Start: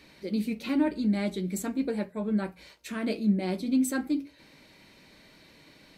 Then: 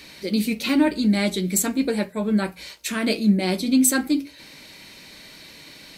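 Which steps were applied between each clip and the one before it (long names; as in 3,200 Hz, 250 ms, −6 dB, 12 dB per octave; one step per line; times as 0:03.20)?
high-shelf EQ 2,300 Hz +10.5 dB
level +6.5 dB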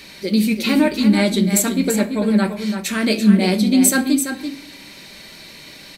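single-tap delay 337 ms −8 dB
on a send at −11 dB: convolution reverb RT60 0.75 s, pre-delay 5 ms
on the sum: level +3.5 dB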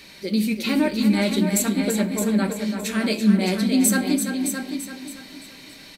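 repeating echo 616 ms, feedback 21%, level −7.5 dB
level −5 dB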